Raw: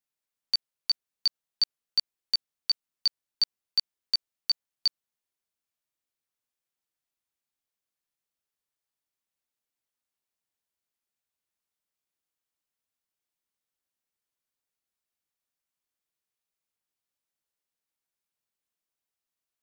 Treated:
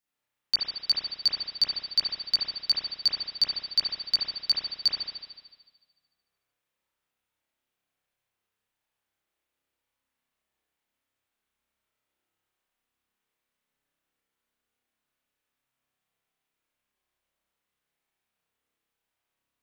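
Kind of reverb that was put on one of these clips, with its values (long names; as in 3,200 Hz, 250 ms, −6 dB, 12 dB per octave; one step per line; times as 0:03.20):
spring reverb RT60 1.4 s, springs 30 ms, chirp 45 ms, DRR −8 dB
level +1 dB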